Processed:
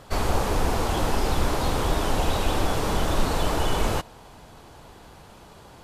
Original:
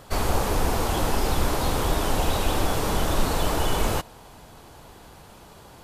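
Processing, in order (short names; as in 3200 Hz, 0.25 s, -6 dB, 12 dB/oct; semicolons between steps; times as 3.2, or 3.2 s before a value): high shelf 11000 Hz -9.5 dB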